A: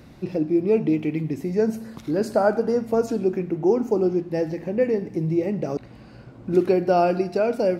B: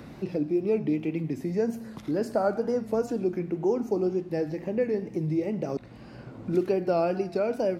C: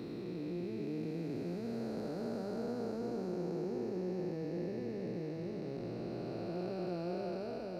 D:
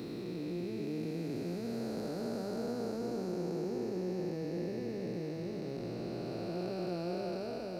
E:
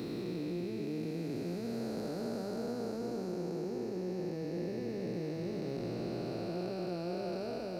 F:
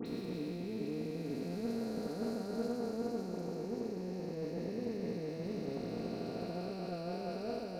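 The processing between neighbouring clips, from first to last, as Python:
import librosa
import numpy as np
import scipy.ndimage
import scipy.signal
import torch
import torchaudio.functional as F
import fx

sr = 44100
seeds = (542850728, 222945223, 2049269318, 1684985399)

y1 = fx.wow_flutter(x, sr, seeds[0], rate_hz=2.1, depth_cents=73.0)
y1 = fx.band_squash(y1, sr, depth_pct=40)
y1 = F.gain(torch.from_numpy(y1), -5.5).numpy()
y2 = fx.spec_blur(y1, sr, span_ms=1390.0)
y2 = fx.peak_eq(y2, sr, hz=4100.0, db=14.5, octaves=0.24)
y2 = fx.doubler(y2, sr, ms=17.0, db=-11)
y2 = F.gain(torch.from_numpy(y2), -6.0).numpy()
y3 = fx.high_shelf(y2, sr, hz=4500.0, db=9.0)
y3 = F.gain(torch.from_numpy(y3), 1.5).numpy()
y4 = fx.rider(y3, sr, range_db=10, speed_s=0.5)
y5 = y4 + 0.45 * np.pad(y4, (int(4.3 * sr / 1000.0), 0))[:len(y4)]
y5 = fx.transient(y5, sr, attack_db=10, sustain_db=-3)
y5 = fx.dispersion(y5, sr, late='highs', ms=62.0, hz=2500.0)
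y5 = F.gain(torch.from_numpy(y5), -3.0).numpy()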